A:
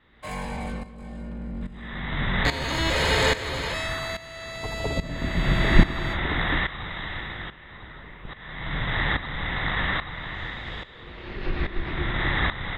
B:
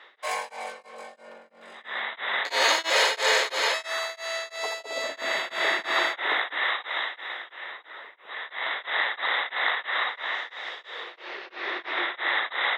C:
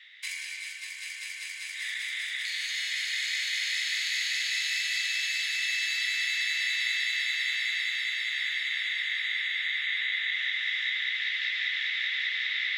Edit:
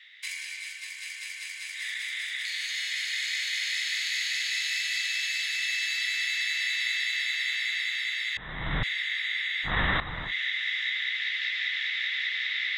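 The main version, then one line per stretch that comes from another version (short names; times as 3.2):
C
8.37–8.83 from A
9.68–10.28 from A, crossfade 0.10 s
not used: B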